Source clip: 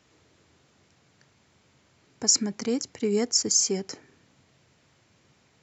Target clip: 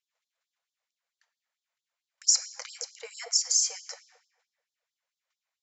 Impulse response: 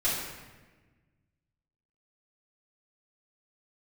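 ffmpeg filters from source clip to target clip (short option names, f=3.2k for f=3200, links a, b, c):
-filter_complex "[0:a]agate=range=-21dB:threshold=-58dB:ratio=16:detection=peak,asplit=2[a][b];[1:a]atrim=start_sample=2205,highshelf=f=4k:g=-6.5[c];[b][c]afir=irnorm=-1:irlink=0,volume=-15.5dB[d];[a][d]amix=inputs=2:normalize=0,afftfilt=real='re*gte(b*sr/1024,460*pow(3300/460,0.5+0.5*sin(2*PI*4.5*pts/sr)))':imag='im*gte(b*sr/1024,460*pow(3300/460,0.5+0.5*sin(2*PI*4.5*pts/sr)))':win_size=1024:overlap=0.75,volume=-2dB"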